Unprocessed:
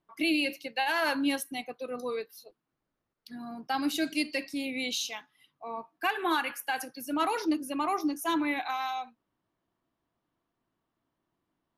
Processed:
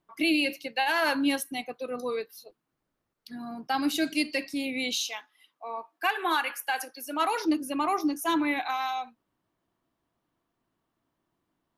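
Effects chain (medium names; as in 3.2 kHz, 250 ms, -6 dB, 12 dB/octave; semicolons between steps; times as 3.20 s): 5.04–7.45 s: high-pass 420 Hz 12 dB/octave; trim +2.5 dB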